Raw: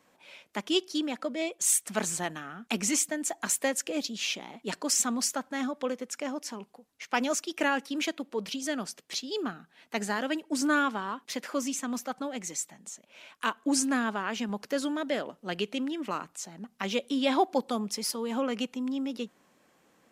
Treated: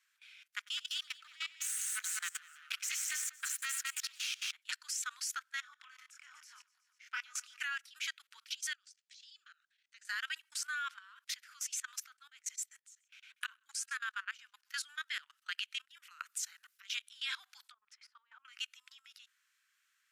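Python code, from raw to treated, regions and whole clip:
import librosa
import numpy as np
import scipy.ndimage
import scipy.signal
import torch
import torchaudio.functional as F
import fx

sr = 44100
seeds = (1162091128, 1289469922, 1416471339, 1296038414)

y = fx.chain(x, sr, fx.halfwave_gain(db=-12.0),
    fx.echo_multitap(ms=(92, 198, 387), db=(-11.5, -5.0, -15.0)), at=(0.57, 4.52))
y = fx.chain(y, sr, fx.high_shelf(hz=2000.0, db=-9.0),
    fx.doubler(ms=26.0, db=-4.0),
    fx.echo_feedback(ms=121, feedback_pct=57, wet_db=-15.5), at=(5.61, 7.59))
y = fx.chain(y, sr, fx.lowpass(hz=8200.0, slope=24),
    fx.peak_eq(hz=880.0, db=-11.0, octaves=2.1),
    fx.level_steps(step_db=15), at=(8.73, 10.05))
y = fx.chain(y, sr, fx.echo_single(ms=131, db=-24.0),
    fx.tremolo_abs(hz=7.7), at=(12.11, 14.74))
y = fx.chain(y, sr, fx.high_shelf(hz=10000.0, db=9.5),
    fx.over_compress(threshold_db=-37.0, ratio=-0.5), at=(15.85, 16.85))
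y = fx.chain(y, sr, fx.env_lowpass_down(base_hz=360.0, full_db=-26.5),
    fx.high_shelf(hz=7200.0, db=8.5), at=(17.64, 18.45))
y = scipy.signal.sosfilt(scipy.signal.ellip(4, 1.0, 60, 1400.0, 'highpass', fs=sr, output='sos'), y)
y = fx.level_steps(y, sr, step_db=20)
y = y * librosa.db_to_amplitude(2.5)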